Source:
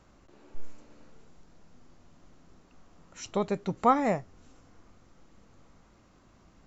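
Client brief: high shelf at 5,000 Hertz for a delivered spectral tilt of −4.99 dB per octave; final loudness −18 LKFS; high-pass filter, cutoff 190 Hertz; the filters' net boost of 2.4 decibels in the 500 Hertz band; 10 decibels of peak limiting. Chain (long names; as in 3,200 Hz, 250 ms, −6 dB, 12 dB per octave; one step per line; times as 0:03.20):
high-pass filter 190 Hz
parametric band 500 Hz +3 dB
high-shelf EQ 5,000 Hz +5.5 dB
level +13.5 dB
brickwall limiter −4 dBFS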